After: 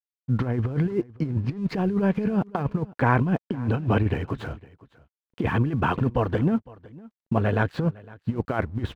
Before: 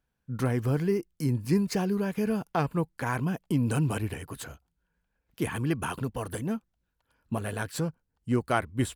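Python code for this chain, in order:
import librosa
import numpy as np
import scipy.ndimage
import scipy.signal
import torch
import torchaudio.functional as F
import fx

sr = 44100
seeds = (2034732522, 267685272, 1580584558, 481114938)

p1 = scipy.signal.sosfilt(scipy.signal.butter(4, 4000.0, 'lowpass', fs=sr, output='sos'), x)
p2 = fx.high_shelf(p1, sr, hz=2100.0, db=-11.5)
p3 = fx.over_compress(p2, sr, threshold_db=-30.0, ratio=-0.5)
p4 = np.sign(p3) * np.maximum(np.abs(p3) - 10.0 ** (-59.5 / 20.0), 0.0)
p5 = p4 + fx.echo_single(p4, sr, ms=508, db=-22.0, dry=0)
y = p5 * 10.0 ** (8.5 / 20.0)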